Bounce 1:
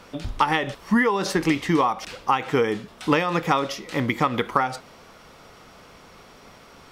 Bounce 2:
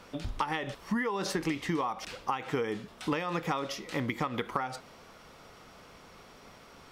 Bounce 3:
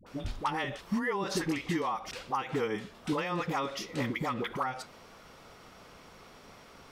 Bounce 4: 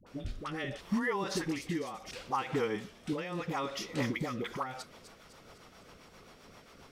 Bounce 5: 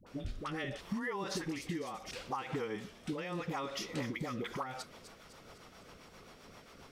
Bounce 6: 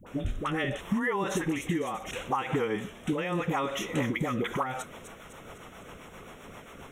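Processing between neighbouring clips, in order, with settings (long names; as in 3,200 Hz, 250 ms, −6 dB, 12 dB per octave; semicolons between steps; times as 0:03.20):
downward compressor 3 to 1, threshold −24 dBFS, peak gain reduction 8 dB; level −5 dB
all-pass dispersion highs, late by 66 ms, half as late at 640 Hz
rotating-speaker cabinet horn 0.7 Hz, later 7.5 Hz, at 0:04.14; delay with a high-pass on its return 252 ms, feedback 56%, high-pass 5,100 Hz, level −7 dB
downward compressor, threshold −34 dBFS, peak gain reduction 7.5 dB
Butterworth band-reject 4,700 Hz, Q 1.7; level +9 dB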